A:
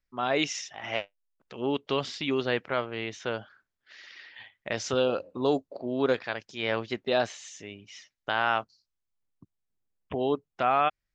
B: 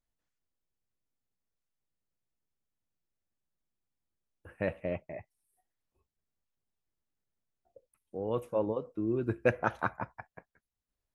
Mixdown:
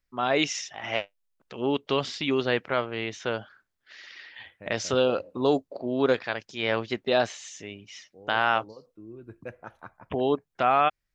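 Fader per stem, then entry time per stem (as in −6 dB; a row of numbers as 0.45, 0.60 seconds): +2.5, −13.0 decibels; 0.00, 0.00 seconds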